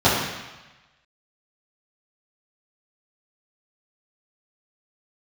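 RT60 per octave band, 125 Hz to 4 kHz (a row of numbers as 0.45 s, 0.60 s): 1.2 s, 1.0 s, 1.0 s, 1.2 s, 1.2 s, 1.1 s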